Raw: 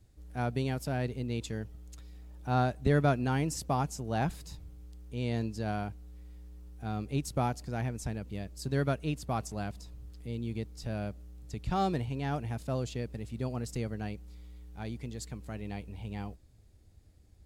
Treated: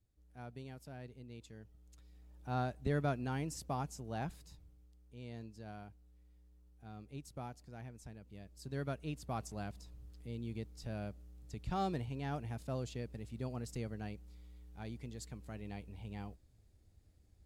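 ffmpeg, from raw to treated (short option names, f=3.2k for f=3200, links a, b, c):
-af "volume=0.5dB,afade=t=in:st=1.55:d=0.94:silence=0.375837,afade=t=out:st=4.01:d=0.92:silence=0.446684,afade=t=in:st=8.22:d=1.28:silence=0.354813"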